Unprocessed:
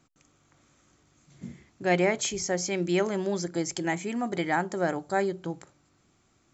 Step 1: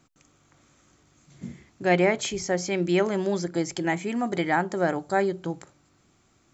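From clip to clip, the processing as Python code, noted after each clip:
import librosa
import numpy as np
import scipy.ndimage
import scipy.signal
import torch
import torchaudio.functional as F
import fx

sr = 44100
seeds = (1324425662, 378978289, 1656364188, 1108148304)

y = fx.dynamic_eq(x, sr, hz=6700.0, q=1.2, threshold_db=-48.0, ratio=4.0, max_db=-6)
y = y * librosa.db_to_amplitude(3.0)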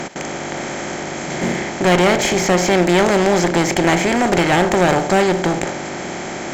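y = fx.bin_compress(x, sr, power=0.4)
y = fx.clip_asym(y, sr, top_db=-23.5, bottom_db=-11.0)
y = y * librosa.db_to_amplitude(7.5)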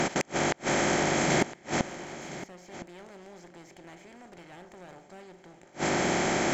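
y = fx.gate_flip(x, sr, shuts_db=-13.0, range_db=-34)
y = y + 10.0 ** (-15.5 / 20.0) * np.pad(y, (int(1012 * sr / 1000.0), 0))[:len(y)]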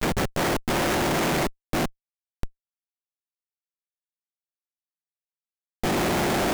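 y = fx.dispersion(x, sr, late='lows', ms=45.0, hz=2600.0)
y = fx.schmitt(y, sr, flips_db=-29.0)
y = y * librosa.db_to_amplitude(8.0)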